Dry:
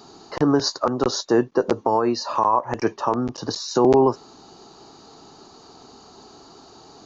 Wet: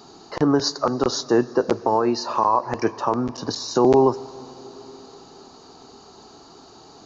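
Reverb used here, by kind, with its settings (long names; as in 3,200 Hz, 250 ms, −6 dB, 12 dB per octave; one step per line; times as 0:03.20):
dense smooth reverb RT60 4.6 s, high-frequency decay 0.95×, DRR 17.5 dB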